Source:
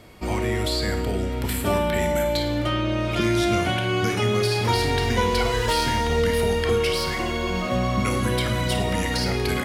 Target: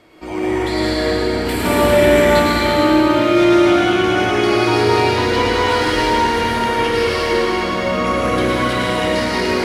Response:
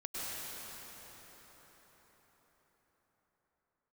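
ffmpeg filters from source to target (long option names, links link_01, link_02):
-filter_complex "[0:a]equalizer=frequency=320:width_type=o:width=0.41:gain=8,asettb=1/sr,asplit=3[link_01][link_02][link_03];[link_01]atrim=end=1.454[link_04];[link_02]atrim=start=1.45:end=2.4,asetpts=PTS-STARTPTS,afade=type=in:duration=0.004:curve=qsin,afade=type=out:start_time=0.946:duration=0.004:curve=qsin,acontrast=89[link_05];[link_03]atrim=start=2.396[link_06];[link_04][link_05]acrossfade=duration=0.004:curve1=hsin:curve2=qsin[link_07];[link_07][link_06]acrossfade=duration=0.004:curve1=qsin:curve2=hsin,asplit=2[link_08][link_09];[link_09]highpass=frequency=720:poles=1,volume=11dB,asoftclip=type=tanh:threshold=-4dB[link_10];[link_08][link_10]amix=inputs=2:normalize=0,lowpass=frequency=3000:poles=1,volume=-6dB[link_11];[1:a]atrim=start_sample=2205[link_12];[link_11][link_12]afir=irnorm=-1:irlink=0"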